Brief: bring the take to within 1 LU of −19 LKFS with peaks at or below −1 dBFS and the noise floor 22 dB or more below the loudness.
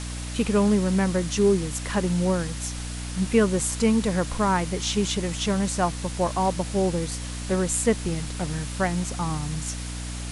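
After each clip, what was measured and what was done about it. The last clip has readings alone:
mains hum 60 Hz; hum harmonics up to 300 Hz; level of the hum −31 dBFS; background noise floor −33 dBFS; target noise floor −47 dBFS; integrated loudness −25.0 LKFS; sample peak −7.5 dBFS; target loudness −19.0 LKFS
→ hum removal 60 Hz, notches 5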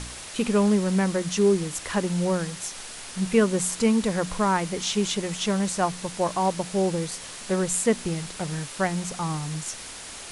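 mains hum none found; background noise floor −40 dBFS; target noise floor −48 dBFS
→ broadband denoise 8 dB, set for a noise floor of −40 dBFS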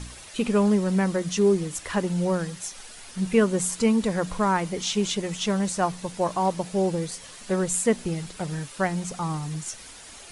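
background noise floor −44 dBFS; target noise floor −48 dBFS
→ broadband denoise 6 dB, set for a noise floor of −44 dBFS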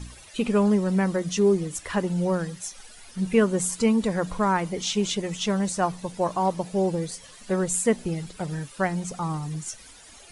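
background noise floor −48 dBFS; integrated loudness −25.5 LKFS; sample peak −8.0 dBFS; target loudness −19.0 LKFS
→ level +6.5 dB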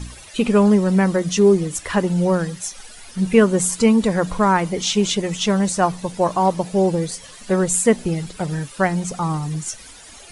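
integrated loudness −19.0 LKFS; sample peak −1.5 dBFS; background noise floor −42 dBFS

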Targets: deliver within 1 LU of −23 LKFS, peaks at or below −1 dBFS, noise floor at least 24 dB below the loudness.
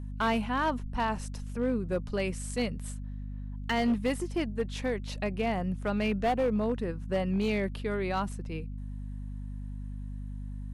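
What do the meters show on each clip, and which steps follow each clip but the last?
share of clipped samples 1.3%; peaks flattened at −22.0 dBFS; mains hum 50 Hz; hum harmonics up to 250 Hz; level of the hum −35 dBFS; integrated loudness −32.0 LKFS; sample peak −22.0 dBFS; target loudness −23.0 LKFS
→ clipped peaks rebuilt −22 dBFS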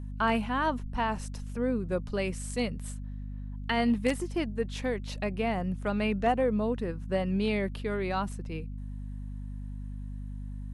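share of clipped samples 0.0%; mains hum 50 Hz; hum harmonics up to 250 Hz; level of the hum −35 dBFS
→ hum removal 50 Hz, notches 5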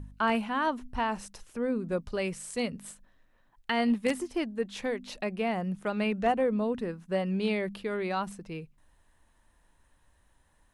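mains hum none found; integrated loudness −31.0 LKFS; sample peak −13.0 dBFS; target loudness −23.0 LKFS
→ level +8 dB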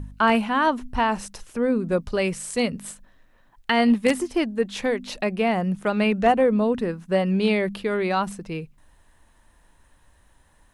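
integrated loudness −23.0 LKFS; sample peak −5.0 dBFS; background noise floor −59 dBFS

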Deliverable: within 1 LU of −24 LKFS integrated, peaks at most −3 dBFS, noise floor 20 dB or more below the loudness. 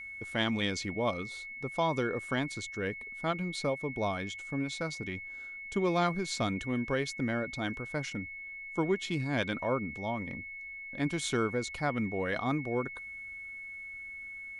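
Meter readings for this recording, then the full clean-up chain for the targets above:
interfering tone 2,200 Hz; level of the tone −41 dBFS; integrated loudness −34.0 LKFS; sample peak −17.0 dBFS; target loudness −24.0 LKFS
→ notch filter 2,200 Hz, Q 30
level +10 dB

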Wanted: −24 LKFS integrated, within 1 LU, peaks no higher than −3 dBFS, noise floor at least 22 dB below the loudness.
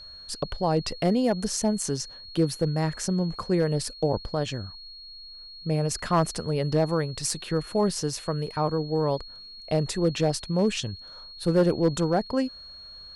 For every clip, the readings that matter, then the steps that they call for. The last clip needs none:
share of clipped samples 0.3%; peaks flattened at −14.5 dBFS; interfering tone 4,300 Hz; level of the tone −42 dBFS; integrated loudness −27.0 LKFS; sample peak −14.5 dBFS; target loudness −24.0 LKFS
→ clipped peaks rebuilt −14.5 dBFS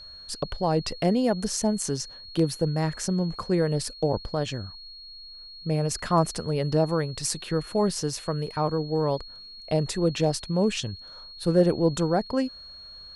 share of clipped samples 0.0%; interfering tone 4,300 Hz; level of the tone −42 dBFS
→ notch filter 4,300 Hz, Q 30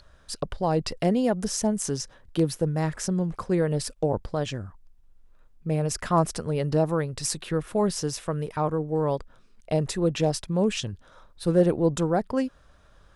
interfering tone none found; integrated loudness −26.5 LKFS; sample peak −9.5 dBFS; target loudness −24.0 LKFS
→ level +2.5 dB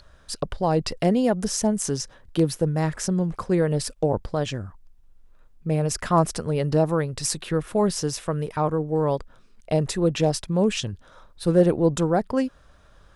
integrated loudness −24.0 LKFS; sample peak −7.0 dBFS; background noise floor −54 dBFS

